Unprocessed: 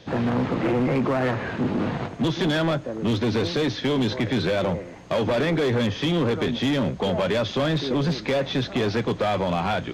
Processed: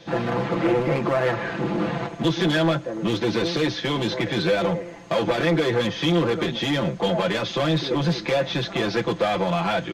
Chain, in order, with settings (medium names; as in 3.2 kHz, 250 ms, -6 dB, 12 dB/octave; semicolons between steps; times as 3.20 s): bass shelf 190 Hz -6 dB; comb 5.9 ms, depth 87%